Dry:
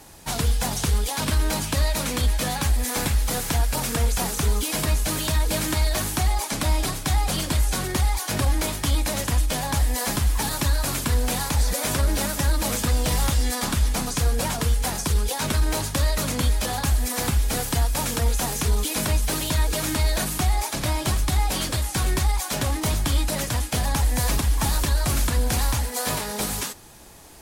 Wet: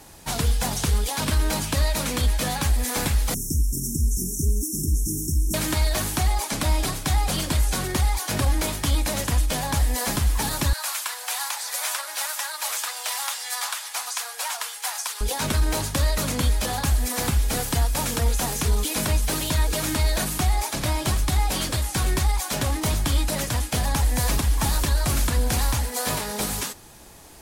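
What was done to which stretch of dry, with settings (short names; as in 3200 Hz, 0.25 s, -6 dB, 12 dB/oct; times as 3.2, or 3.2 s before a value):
3.34–5.54 brick-wall FIR band-stop 420–5300 Hz
10.73–15.21 HPF 810 Hz 24 dB/oct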